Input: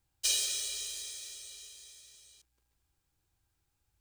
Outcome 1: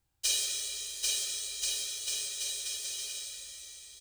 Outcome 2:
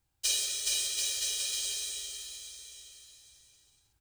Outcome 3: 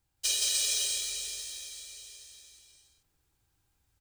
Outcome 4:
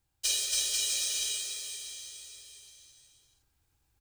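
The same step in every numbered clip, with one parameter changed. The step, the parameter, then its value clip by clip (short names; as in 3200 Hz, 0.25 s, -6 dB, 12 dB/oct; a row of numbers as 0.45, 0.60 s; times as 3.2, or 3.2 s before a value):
bouncing-ball echo, first gap: 0.79, 0.42, 0.17, 0.28 s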